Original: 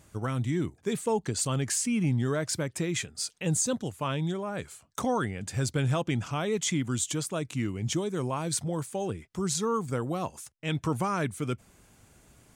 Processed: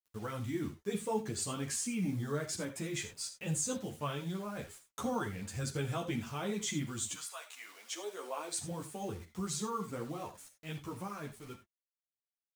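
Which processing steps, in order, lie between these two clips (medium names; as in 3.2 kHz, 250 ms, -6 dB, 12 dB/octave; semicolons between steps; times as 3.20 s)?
fade out at the end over 3.14 s; word length cut 8-bit, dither none; 1.97–2.37 s: peaking EQ 2.7 kHz -8 dB 0.42 oct; 7.13–8.56 s: high-pass 1 kHz -> 320 Hz 24 dB/octave; gated-style reverb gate 110 ms flat, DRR 8 dB; three-phase chorus; trim -4.5 dB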